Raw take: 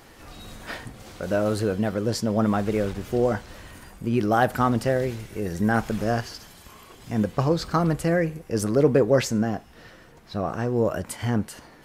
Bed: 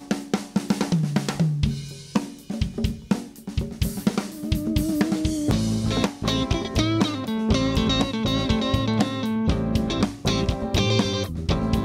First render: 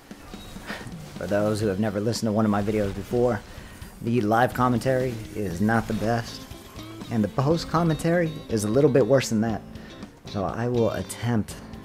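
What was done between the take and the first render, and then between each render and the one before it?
add bed -18 dB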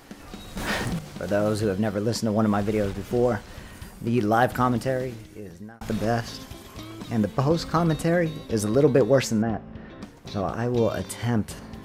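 0.57–0.99 sample leveller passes 3; 4.57–5.81 fade out; 9.42–10.02 LPF 2200 Hz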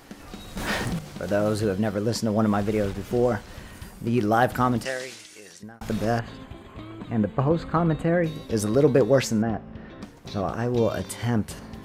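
4.85–5.63 weighting filter ITU-R 468; 6.19–8.24 running mean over 8 samples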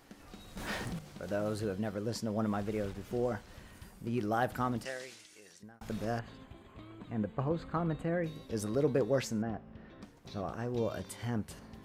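gain -11 dB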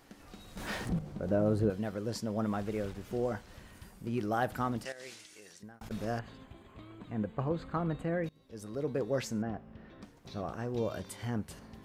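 0.89–1.7 tilt shelf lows +8.5 dB, about 1100 Hz; 4.92–5.91 negative-ratio compressor -47 dBFS; 8.29–9.38 fade in, from -22.5 dB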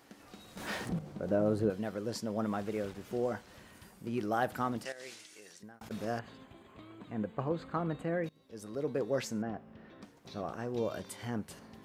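HPF 250 Hz 6 dB/oct; low shelf 360 Hz +3 dB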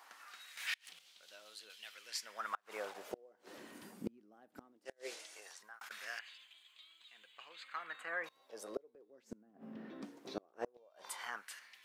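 LFO high-pass sine 0.18 Hz 240–3500 Hz; flipped gate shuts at -26 dBFS, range -34 dB

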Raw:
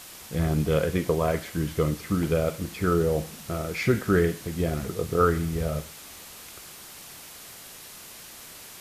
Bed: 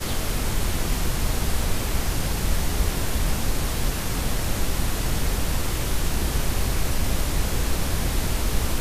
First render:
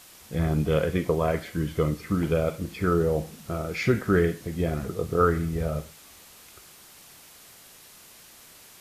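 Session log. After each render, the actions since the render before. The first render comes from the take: noise print and reduce 6 dB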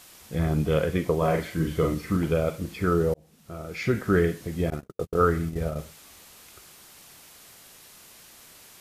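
1.18–2.17 doubler 43 ms -3 dB; 3.14–4.12 fade in; 4.7–5.79 gate -29 dBFS, range -56 dB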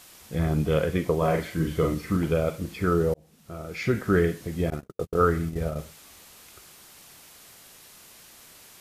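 nothing audible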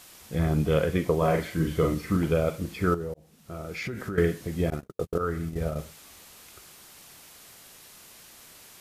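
2.94–4.18 compressor 10:1, threshold -29 dBFS; 5.18–5.82 fade in equal-power, from -12 dB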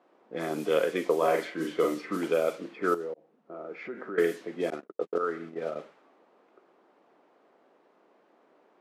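low-pass opened by the level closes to 660 Hz, open at -19.5 dBFS; HPF 280 Hz 24 dB/oct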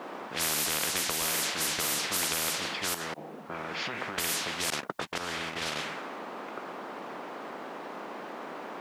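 compressor, threshold -27 dBFS, peak gain reduction 8 dB; spectral compressor 10:1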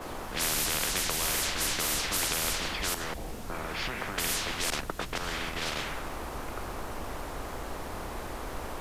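add bed -17.5 dB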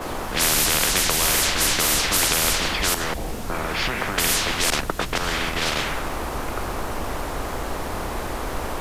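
gain +9.5 dB

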